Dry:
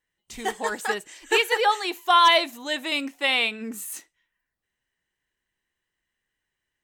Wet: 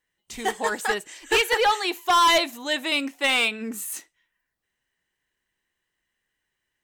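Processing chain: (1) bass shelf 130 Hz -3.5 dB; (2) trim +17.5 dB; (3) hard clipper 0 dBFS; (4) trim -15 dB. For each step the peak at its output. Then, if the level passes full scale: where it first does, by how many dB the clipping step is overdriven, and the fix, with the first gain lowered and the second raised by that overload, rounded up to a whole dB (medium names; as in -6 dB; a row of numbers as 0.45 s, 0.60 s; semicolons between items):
-8.0 dBFS, +9.5 dBFS, 0.0 dBFS, -15.0 dBFS; step 2, 9.5 dB; step 2 +7.5 dB, step 4 -5 dB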